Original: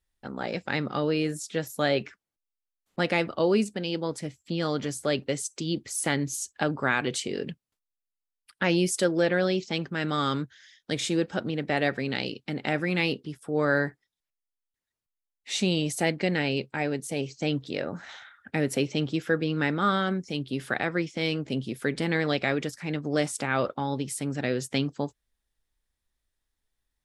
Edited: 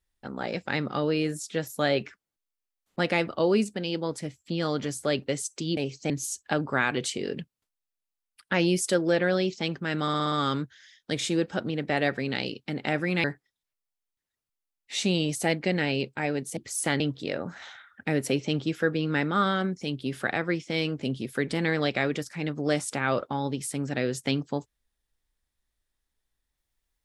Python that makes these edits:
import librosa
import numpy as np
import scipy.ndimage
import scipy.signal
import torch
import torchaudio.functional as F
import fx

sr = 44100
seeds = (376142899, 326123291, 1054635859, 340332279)

y = fx.edit(x, sr, fx.swap(start_s=5.77, length_s=0.43, other_s=17.14, other_length_s=0.33),
    fx.stutter(start_s=10.12, slice_s=0.06, count=6),
    fx.cut(start_s=13.04, length_s=0.77), tone=tone)